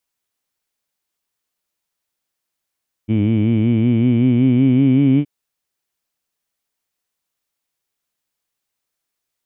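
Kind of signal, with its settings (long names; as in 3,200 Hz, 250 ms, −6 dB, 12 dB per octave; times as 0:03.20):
vowel by formant synthesis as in heed, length 2.17 s, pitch 105 Hz, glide +5 semitones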